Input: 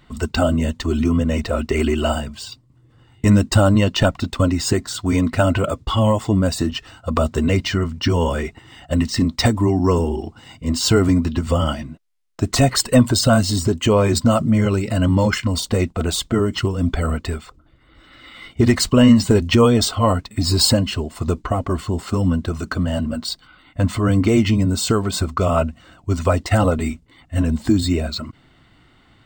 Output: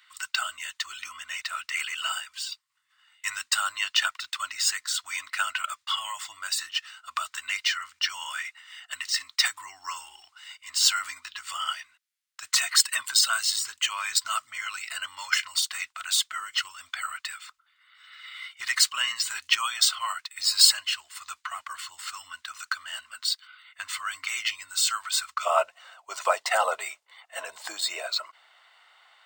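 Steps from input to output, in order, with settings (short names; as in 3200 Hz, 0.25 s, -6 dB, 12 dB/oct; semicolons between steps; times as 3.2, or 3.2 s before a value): inverse Chebyshev high-pass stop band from 510 Hz, stop band 50 dB, from 25.45 s stop band from 270 Hz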